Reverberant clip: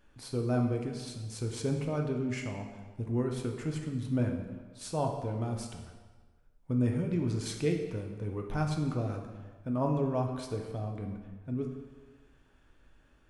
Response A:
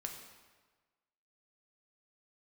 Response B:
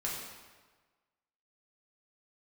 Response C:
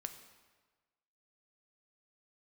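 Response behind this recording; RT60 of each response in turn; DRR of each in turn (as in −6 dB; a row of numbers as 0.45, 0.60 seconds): A; 1.4, 1.4, 1.4 seconds; 2.0, −5.5, 6.5 decibels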